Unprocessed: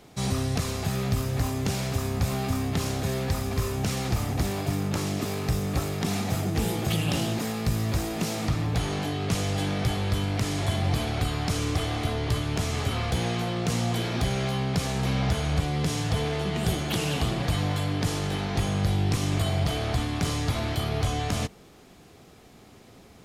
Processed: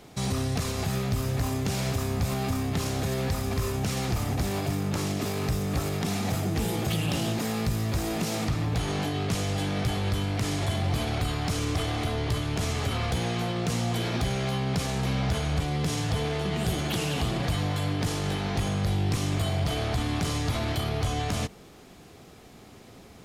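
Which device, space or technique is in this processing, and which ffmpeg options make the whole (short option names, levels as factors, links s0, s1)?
clipper into limiter: -af "asoftclip=type=hard:threshold=0.119,alimiter=limit=0.0794:level=0:latency=1,volume=1.26"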